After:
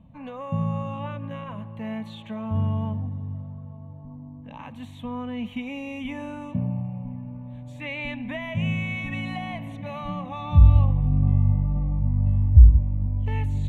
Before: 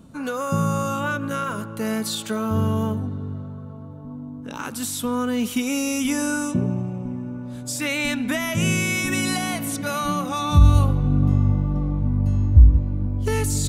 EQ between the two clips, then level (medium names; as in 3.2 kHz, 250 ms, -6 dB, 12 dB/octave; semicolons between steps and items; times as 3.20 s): distance through air 260 m; bass shelf 190 Hz +4.5 dB; static phaser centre 1.4 kHz, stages 6; -3.5 dB